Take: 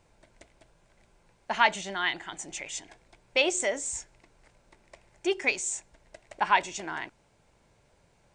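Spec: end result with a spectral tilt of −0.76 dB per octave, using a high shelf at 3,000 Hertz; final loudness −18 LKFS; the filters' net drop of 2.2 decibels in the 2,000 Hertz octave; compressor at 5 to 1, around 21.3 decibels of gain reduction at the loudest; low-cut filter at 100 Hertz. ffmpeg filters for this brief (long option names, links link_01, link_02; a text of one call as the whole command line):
ffmpeg -i in.wav -af "highpass=100,equalizer=frequency=2000:width_type=o:gain=-6,highshelf=frequency=3000:gain=7.5,acompressor=threshold=-43dB:ratio=5,volume=27dB" out.wav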